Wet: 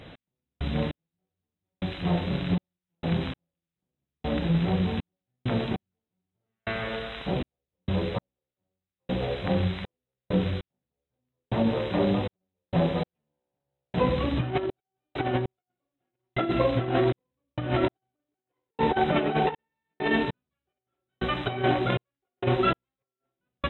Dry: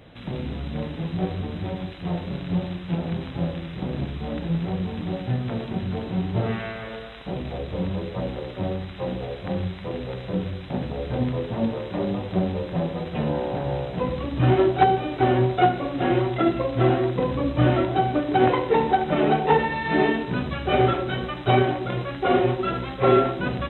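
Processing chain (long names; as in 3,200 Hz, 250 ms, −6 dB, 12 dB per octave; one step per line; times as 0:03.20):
low-pass filter 3,200 Hz 6 dB per octave
high-shelf EQ 2,300 Hz +9.5 dB
compressor whose output falls as the input rises −22 dBFS, ratio −0.5
gate pattern "x...xx......xxxx" 99 BPM −60 dB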